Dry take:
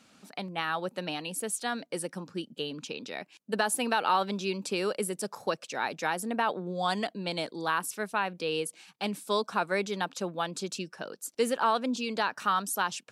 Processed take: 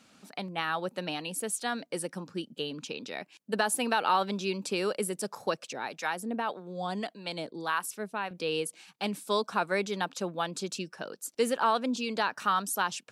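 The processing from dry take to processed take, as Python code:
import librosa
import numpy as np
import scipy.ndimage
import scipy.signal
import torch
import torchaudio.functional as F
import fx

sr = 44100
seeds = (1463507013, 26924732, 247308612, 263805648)

y = fx.harmonic_tremolo(x, sr, hz=1.7, depth_pct=70, crossover_hz=650.0, at=(5.73, 8.31))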